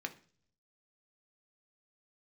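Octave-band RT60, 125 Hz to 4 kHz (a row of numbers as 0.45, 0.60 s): 0.95, 0.70, 0.55, 0.40, 0.45, 0.55 s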